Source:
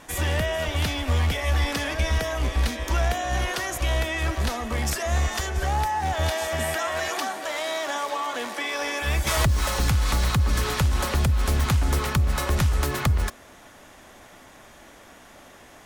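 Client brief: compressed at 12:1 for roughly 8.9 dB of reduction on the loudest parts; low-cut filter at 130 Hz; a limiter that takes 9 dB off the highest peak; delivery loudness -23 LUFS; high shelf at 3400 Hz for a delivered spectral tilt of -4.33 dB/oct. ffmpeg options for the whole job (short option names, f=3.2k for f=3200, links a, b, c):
-af "highpass=130,highshelf=f=3.4k:g=-8,acompressor=threshold=-30dB:ratio=12,volume=14.5dB,alimiter=limit=-14.5dB:level=0:latency=1"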